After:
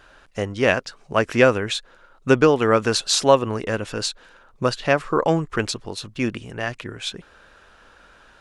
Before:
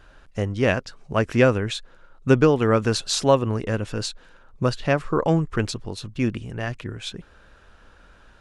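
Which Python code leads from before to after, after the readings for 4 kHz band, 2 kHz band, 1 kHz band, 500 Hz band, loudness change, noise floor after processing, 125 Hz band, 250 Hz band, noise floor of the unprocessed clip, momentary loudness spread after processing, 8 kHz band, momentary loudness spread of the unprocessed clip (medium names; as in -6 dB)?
+4.5 dB, +4.5 dB, +4.0 dB, +2.5 dB, +1.5 dB, -53 dBFS, -4.0 dB, -0.5 dB, -53 dBFS, 13 LU, +4.5 dB, 14 LU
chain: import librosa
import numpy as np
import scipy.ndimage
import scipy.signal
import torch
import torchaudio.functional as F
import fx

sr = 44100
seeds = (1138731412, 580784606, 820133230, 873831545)

y = fx.low_shelf(x, sr, hz=230.0, db=-11.5)
y = y * 10.0 ** (4.5 / 20.0)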